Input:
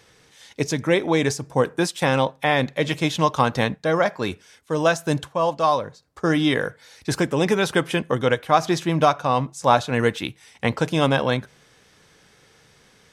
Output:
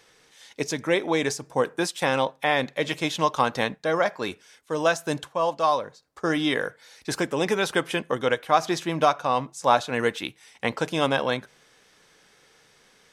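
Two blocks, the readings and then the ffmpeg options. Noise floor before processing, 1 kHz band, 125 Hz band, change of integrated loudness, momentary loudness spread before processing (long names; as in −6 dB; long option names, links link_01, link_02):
−56 dBFS, −2.5 dB, −10.0 dB, −3.5 dB, 8 LU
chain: -af "equalizer=frequency=87:width=0.55:gain=-11,volume=-2dB"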